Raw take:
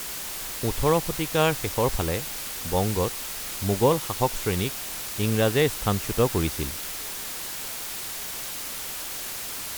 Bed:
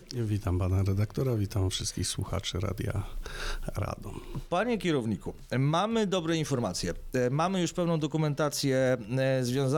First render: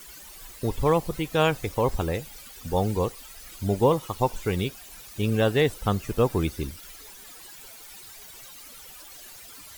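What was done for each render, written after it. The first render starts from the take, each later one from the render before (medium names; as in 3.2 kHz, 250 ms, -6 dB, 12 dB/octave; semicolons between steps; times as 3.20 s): noise reduction 15 dB, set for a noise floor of -34 dBFS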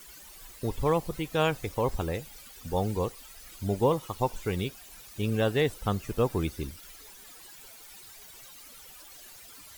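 trim -4 dB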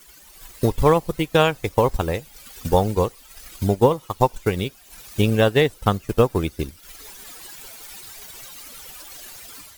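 transient shaper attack +7 dB, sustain -7 dB; level rider gain up to 9 dB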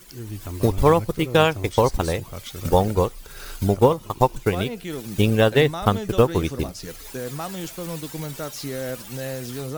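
add bed -4 dB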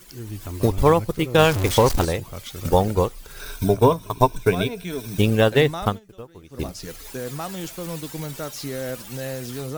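1.38–2.05 s: jump at every zero crossing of -20.5 dBFS; 3.40–5.18 s: rippled EQ curve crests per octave 1.6, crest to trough 10 dB; 5.83–6.66 s: dip -22.5 dB, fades 0.17 s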